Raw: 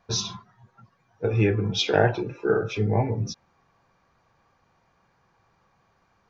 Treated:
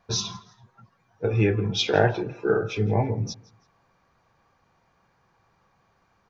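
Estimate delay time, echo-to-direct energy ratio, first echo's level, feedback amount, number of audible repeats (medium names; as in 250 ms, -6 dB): 165 ms, -22.5 dB, -23.0 dB, 34%, 2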